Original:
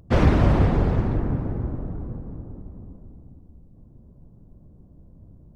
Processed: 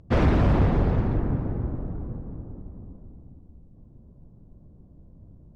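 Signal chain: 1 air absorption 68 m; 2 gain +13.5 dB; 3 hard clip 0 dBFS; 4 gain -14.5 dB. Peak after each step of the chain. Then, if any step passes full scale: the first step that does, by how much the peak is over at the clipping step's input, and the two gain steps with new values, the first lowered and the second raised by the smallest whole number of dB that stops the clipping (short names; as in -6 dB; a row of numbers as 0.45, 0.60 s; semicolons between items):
-5.5, +8.0, 0.0, -14.5 dBFS; step 2, 8.0 dB; step 2 +5.5 dB, step 4 -6.5 dB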